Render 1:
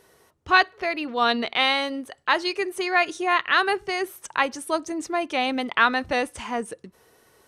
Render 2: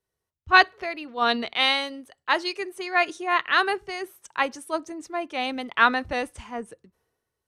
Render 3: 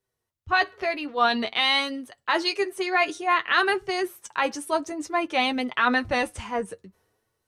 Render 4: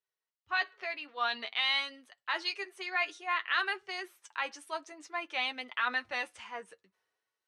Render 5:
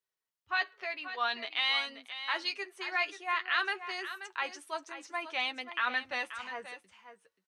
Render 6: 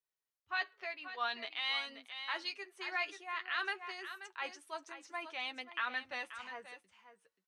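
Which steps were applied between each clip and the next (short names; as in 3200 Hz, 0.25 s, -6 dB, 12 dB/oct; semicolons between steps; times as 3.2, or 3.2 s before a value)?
three-band expander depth 70%; gain -2.5 dB
in parallel at -2 dB: vocal rider within 5 dB 0.5 s; on the sum: limiter -8 dBFS, peak gain reduction 10 dB; flange 0.52 Hz, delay 7.7 ms, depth 3.1 ms, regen +31%; gain +2 dB
band-pass 2500 Hz, Q 0.66; gain -6.5 dB
echo 0.532 s -11.5 dB
noise-modulated level, depth 55%; gain -3 dB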